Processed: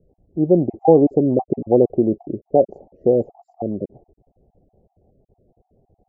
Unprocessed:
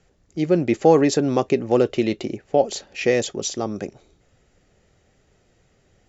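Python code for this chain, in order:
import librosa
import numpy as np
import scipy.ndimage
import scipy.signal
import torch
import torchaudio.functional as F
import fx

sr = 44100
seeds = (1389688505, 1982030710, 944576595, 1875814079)

y = fx.spec_dropout(x, sr, seeds[0], share_pct=30)
y = scipy.signal.sosfilt(scipy.signal.ellip(4, 1.0, 50, 760.0, 'lowpass', fs=sr, output='sos'), y)
y = y * 10.0 ** (4.0 / 20.0)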